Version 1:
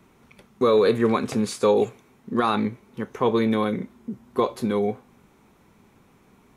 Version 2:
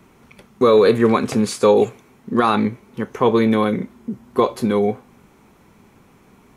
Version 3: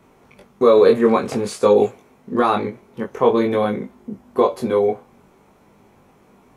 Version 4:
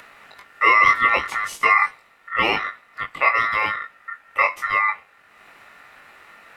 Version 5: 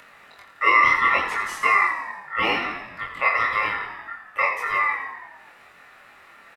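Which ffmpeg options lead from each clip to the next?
-af "bandreject=f=3700:w=26,volume=1.88"
-af "equalizer=f=610:t=o:w=1.4:g=7,flanger=delay=19.5:depth=2.3:speed=0.5,volume=0.891"
-af "aeval=exprs='val(0)*sin(2*PI*1600*n/s)':c=same,acompressor=mode=upward:threshold=0.0141:ratio=2.5"
-filter_complex "[0:a]asplit=2[s0][s1];[s1]asplit=8[s2][s3][s4][s5][s6][s7][s8][s9];[s2]adelay=85,afreqshift=-43,volume=0.376[s10];[s3]adelay=170,afreqshift=-86,volume=0.237[s11];[s4]adelay=255,afreqshift=-129,volume=0.15[s12];[s5]adelay=340,afreqshift=-172,volume=0.0944[s13];[s6]adelay=425,afreqshift=-215,volume=0.0589[s14];[s7]adelay=510,afreqshift=-258,volume=0.0372[s15];[s8]adelay=595,afreqshift=-301,volume=0.0234[s16];[s9]adelay=680,afreqshift=-344,volume=0.0148[s17];[s10][s11][s12][s13][s14][s15][s16][s17]amix=inputs=8:normalize=0[s18];[s0][s18]amix=inputs=2:normalize=0,flanger=delay=22.5:depth=4.1:speed=0.7"

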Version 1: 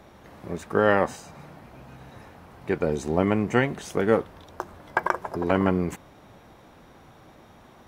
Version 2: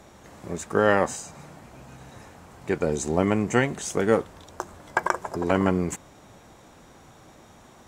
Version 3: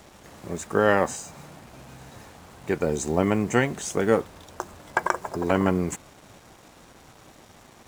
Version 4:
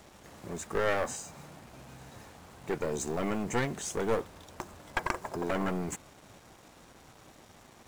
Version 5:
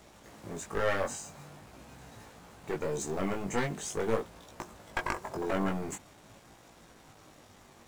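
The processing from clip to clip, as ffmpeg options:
-af "equalizer=f=7400:t=o:w=0.75:g=13"
-af "acrusher=bits=7:mix=0:aa=0.5"
-af "aeval=exprs='clip(val(0),-1,0.0501)':c=same,volume=0.596"
-af "flanger=delay=17.5:depth=3.4:speed=0.45,volume=1.26"

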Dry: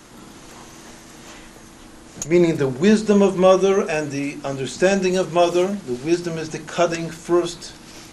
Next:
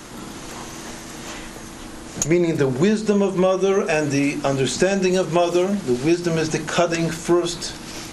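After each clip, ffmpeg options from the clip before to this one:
-af "acompressor=threshold=0.0891:ratio=12,volume=2.24"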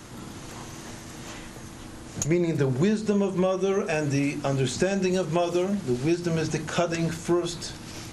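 -af "equalizer=f=100:w=1.2:g=10,volume=0.447"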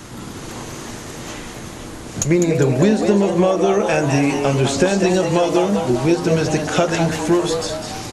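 -filter_complex "[0:a]asplit=7[s0][s1][s2][s3][s4][s5][s6];[s1]adelay=202,afreqshift=140,volume=0.447[s7];[s2]adelay=404,afreqshift=280,volume=0.229[s8];[s3]adelay=606,afreqshift=420,volume=0.116[s9];[s4]adelay=808,afreqshift=560,volume=0.0596[s10];[s5]adelay=1010,afreqshift=700,volume=0.0302[s11];[s6]adelay=1212,afreqshift=840,volume=0.0155[s12];[s0][s7][s8][s9][s10][s11][s12]amix=inputs=7:normalize=0,volume=2.37"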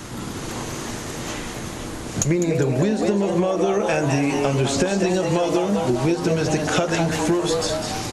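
-af "acompressor=threshold=0.126:ratio=6,volume=1.19"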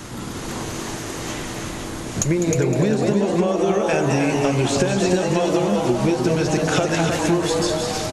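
-af "aecho=1:1:311:0.562"

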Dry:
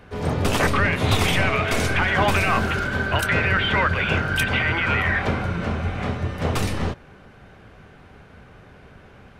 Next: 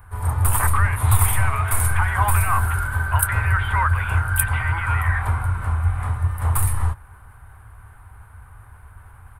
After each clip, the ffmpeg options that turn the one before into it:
-af "firequalizer=gain_entry='entry(100,0);entry(160,-23);entry(560,-22);entry(930,-3);entry(2700,-20);entry(6000,-22);entry(9100,8)':delay=0.05:min_phase=1,areverse,acompressor=mode=upward:threshold=0.00501:ratio=2.5,areverse,volume=2.24"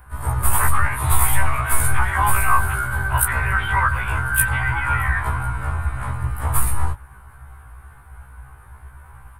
-af "afftfilt=real='re*1.73*eq(mod(b,3),0)':imag='im*1.73*eq(mod(b,3),0)':win_size=2048:overlap=0.75,volume=1.68"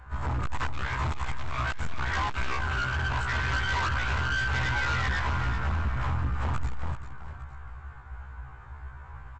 -af "acompressor=threshold=0.141:ratio=6,aresample=16000,volume=16.8,asoftclip=hard,volume=0.0596,aresample=44100,aecho=1:1:387|859:0.316|0.106,volume=0.841"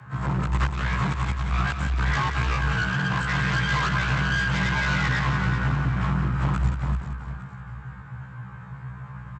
-af "aeval=exprs='0.0841*(cos(1*acos(clip(val(0)/0.0841,-1,1)))-cos(1*PI/2))+0.000668*(cos(5*acos(clip(val(0)/0.0841,-1,1)))-cos(5*PI/2))':c=same,aecho=1:1:179:0.376,afreqshift=62,volume=1.41"

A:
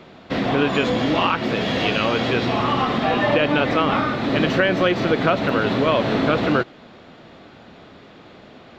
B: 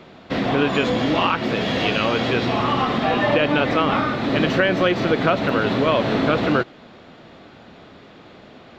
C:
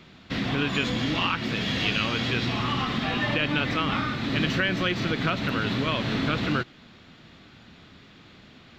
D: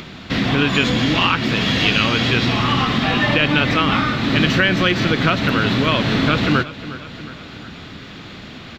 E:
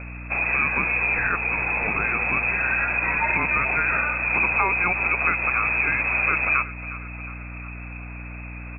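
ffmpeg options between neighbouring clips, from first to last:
-af anull
-af "equalizer=f=590:w=0.61:g=-14"
-filter_complex "[0:a]aecho=1:1:360|720|1080|1440:0.15|0.0733|0.0359|0.0176,asplit=2[s0][s1];[s1]acompressor=mode=upward:threshold=0.0316:ratio=2.5,volume=0.794[s2];[s0][s2]amix=inputs=2:normalize=0,volume=1.58"
-af "lowpass=f=2300:t=q:w=0.5098,lowpass=f=2300:t=q:w=0.6013,lowpass=f=2300:t=q:w=0.9,lowpass=f=2300:t=q:w=2.563,afreqshift=-2700,aeval=exprs='val(0)+0.0316*(sin(2*PI*60*n/s)+sin(2*PI*2*60*n/s)/2+sin(2*PI*3*60*n/s)/3+sin(2*PI*4*60*n/s)/4+sin(2*PI*5*60*n/s)/5)':c=same,volume=0.562"

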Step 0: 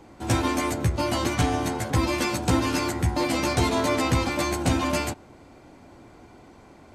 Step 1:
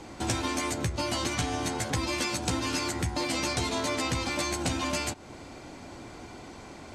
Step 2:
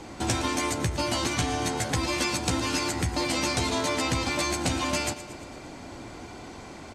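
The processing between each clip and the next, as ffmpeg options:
-af "lowpass=8300,highshelf=f=2700:g=10,acompressor=threshold=0.0224:ratio=4,volume=1.58"
-af "aecho=1:1:115|230|345|460|575|690:0.2|0.116|0.0671|0.0389|0.0226|0.0131,volume=1.33"

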